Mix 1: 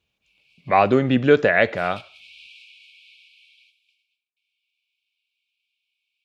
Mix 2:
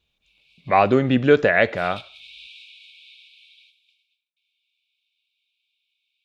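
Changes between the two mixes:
background: add peaking EQ 3.7 kHz +10.5 dB 0.22 oct; master: remove high-pass 72 Hz

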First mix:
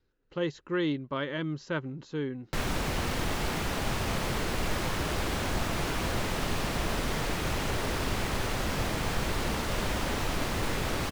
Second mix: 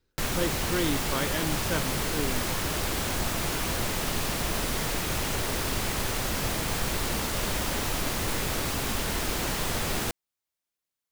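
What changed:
background: entry -2.35 s; master: remove low-pass 3.3 kHz 6 dB/octave

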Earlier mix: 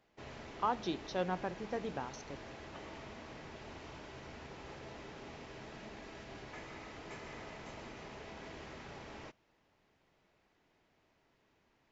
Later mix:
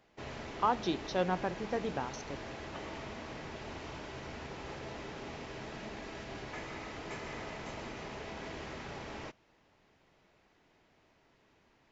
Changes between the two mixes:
speech +4.0 dB; background +5.5 dB

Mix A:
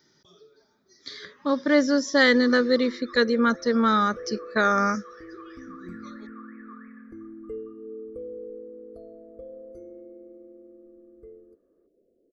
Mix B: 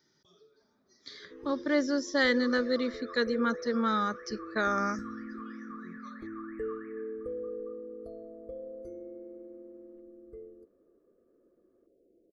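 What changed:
speech -7.5 dB; second sound: entry -0.90 s

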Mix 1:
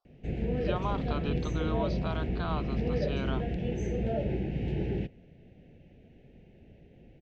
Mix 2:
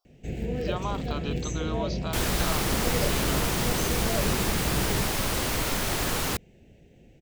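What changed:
second sound: unmuted; master: remove distance through air 230 m

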